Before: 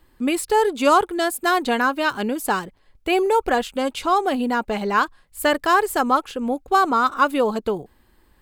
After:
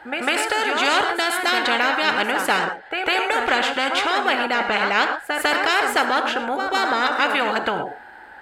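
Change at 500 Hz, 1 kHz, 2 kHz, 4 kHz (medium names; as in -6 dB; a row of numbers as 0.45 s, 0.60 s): -3.0 dB, -0.5 dB, +6.0 dB, +8.0 dB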